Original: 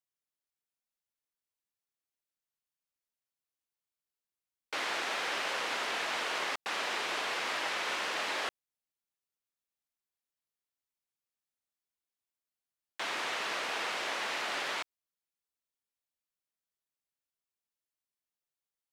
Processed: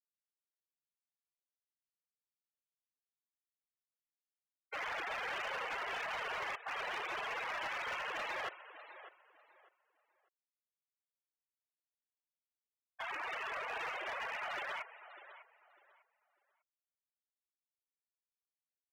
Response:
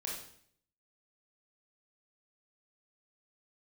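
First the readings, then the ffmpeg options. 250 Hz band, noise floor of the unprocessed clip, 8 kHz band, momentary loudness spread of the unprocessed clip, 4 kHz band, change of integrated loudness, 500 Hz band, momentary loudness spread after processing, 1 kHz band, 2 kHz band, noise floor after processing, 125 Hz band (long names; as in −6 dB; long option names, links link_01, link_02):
−11.0 dB, below −85 dBFS, −16.0 dB, 4 LU, −11.5 dB, −6.0 dB, −5.0 dB, 15 LU, −4.0 dB, −5.0 dB, below −85 dBFS, can't be measured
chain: -filter_complex "[0:a]afftfilt=real='re*gte(hypot(re,im),0.0355)':imag='im*gte(hypot(re,im),0.0355)':win_size=1024:overlap=0.75,asplit=2[link_01][link_02];[link_02]adelay=599,lowpass=frequency=3000:poles=1,volume=-14dB,asplit=2[link_03][link_04];[link_04]adelay=599,lowpass=frequency=3000:poles=1,volume=0.26,asplit=2[link_05][link_06];[link_06]adelay=599,lowpass=frequency=3000:poles=1,volume=0.26[link_07];[link_01][link_03][link_05][link_07]amix=inputs=4:normalize=0,volume=34dB,asoftclip=hard,volume=-34dB,volume=-1.5dB"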